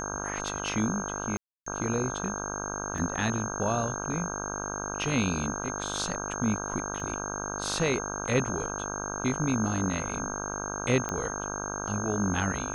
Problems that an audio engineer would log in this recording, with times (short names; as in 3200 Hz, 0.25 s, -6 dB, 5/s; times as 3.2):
buzz 50 Hz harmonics 32 -36 dBFS
tone 6400 Hz -36 dBFS
1.37–1.66 gap 0.294 s
2.98 gap 2.2 ms
7 gap 2.2 ms
11.09 pop -16 dBFS